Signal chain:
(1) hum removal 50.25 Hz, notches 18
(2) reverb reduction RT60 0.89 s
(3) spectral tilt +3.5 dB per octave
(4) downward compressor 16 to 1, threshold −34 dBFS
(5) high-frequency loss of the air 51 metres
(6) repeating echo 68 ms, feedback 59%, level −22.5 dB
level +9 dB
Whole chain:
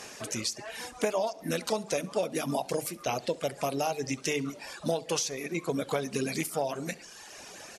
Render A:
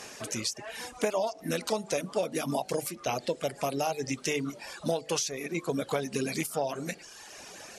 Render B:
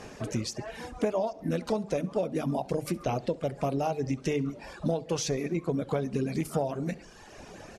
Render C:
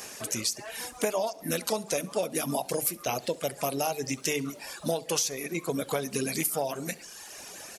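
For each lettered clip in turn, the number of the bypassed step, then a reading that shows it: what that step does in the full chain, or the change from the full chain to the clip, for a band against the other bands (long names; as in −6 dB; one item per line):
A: 6, echo-to-direct ratio −20.5 dB to none audible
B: 3, 125 Hz band +10.0 dB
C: 5, 8 kHz band +4.5 dB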